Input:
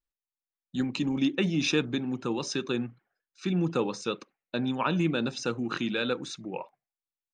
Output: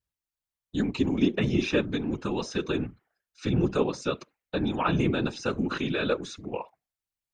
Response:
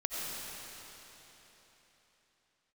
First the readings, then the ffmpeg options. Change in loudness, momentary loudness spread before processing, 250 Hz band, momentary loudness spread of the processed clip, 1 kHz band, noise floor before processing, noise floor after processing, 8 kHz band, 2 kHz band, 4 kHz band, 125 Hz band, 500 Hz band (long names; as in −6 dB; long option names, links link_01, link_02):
+1.5 dB, 11 LU, +1.5 dB, 11 LU, +2.0 dB, below −85 dBFS, below −85 dBFS, −4.5 dB, +0.5 dB, −2.0 dB, +3.0 dB, +3.0 dB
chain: -filter_complex "[0:a]afftfilt=real='hypot(re,im)*cos(2*PI*random(0))':imag='hypot(re,im)*sin(2*PI*random(1))':win_size=512:overlap=0.75,acrossover=split=2600[link_01][link_02];[link_02]acompressor=threshold=-46dB:ratio=4:attack=1:release=60[link_03];[link_01][link_03]amix=inputs=2:normalize=0,volume=8dB"